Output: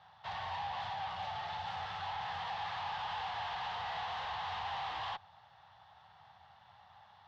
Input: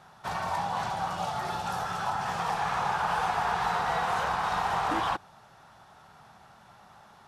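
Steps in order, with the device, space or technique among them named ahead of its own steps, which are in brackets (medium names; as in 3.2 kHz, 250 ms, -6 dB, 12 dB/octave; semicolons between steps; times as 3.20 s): scooped metal amplifier (valve stage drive 37 dB, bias 0.8; cabinet simulation 85–3500 Hz, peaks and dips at 90 Hz +9 dB, 800 Hz +6 dB, 1.4 kHz -9 dB, 2.4 kHz -9 dB; amplifier tone stack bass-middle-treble 10-0-10); trim +8.5 dB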